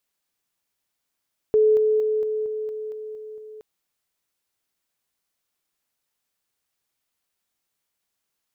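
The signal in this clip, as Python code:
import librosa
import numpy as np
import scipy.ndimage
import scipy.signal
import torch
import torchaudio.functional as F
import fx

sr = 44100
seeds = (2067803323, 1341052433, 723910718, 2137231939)

y = fx.level_ladder(sr, hz=431.0, from_db=-13.5, step_db=-3.0, steps=9, dwell_s=0.23, gap_s=0.0)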